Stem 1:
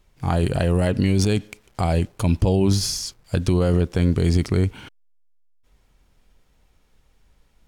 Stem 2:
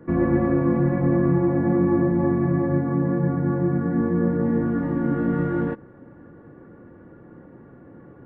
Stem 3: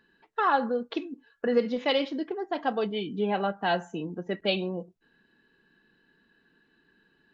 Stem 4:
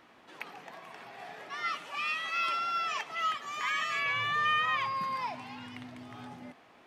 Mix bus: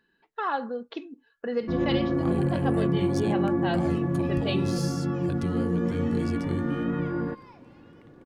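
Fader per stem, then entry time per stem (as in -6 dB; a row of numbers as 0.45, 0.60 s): -14.0, -5.5, -4.5, -17.5 dB; 1.95, 1.60, 0.00, 2.25 s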